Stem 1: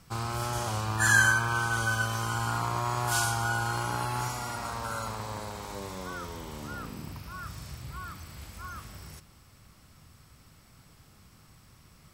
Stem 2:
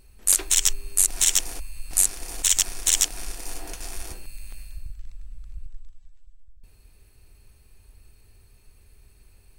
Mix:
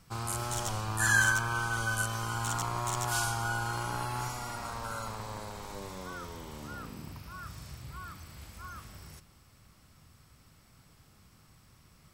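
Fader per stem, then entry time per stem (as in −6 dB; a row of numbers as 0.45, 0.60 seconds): −3.5, −19.0 decibels; 0.00, 0.00 seconds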